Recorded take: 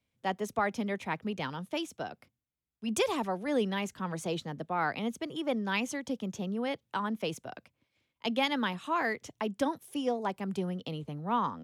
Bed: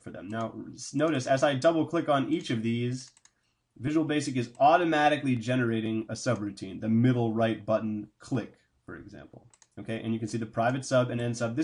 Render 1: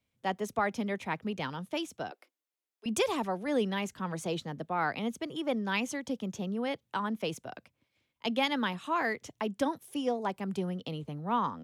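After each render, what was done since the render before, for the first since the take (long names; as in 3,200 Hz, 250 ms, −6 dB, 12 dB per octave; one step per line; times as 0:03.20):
0:02.11–0:02.86: Butterworth high-pass 310 Hz 48 dB per octave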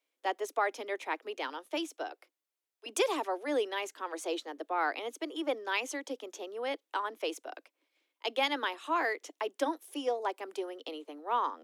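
Butterworth high-pass 290 Hz 72 dB per octave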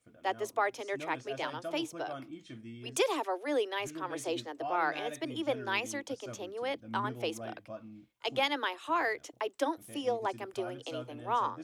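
mix in bed −17.5 dB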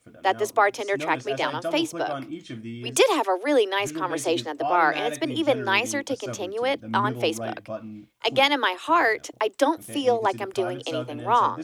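level +10.5 dB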